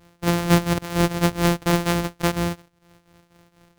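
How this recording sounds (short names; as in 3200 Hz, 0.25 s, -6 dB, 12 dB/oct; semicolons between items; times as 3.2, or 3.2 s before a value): a buzz of ramps at a fixed pitch in blocks of 256 samples; tremolo triangle 4.2 Hz, depth 80%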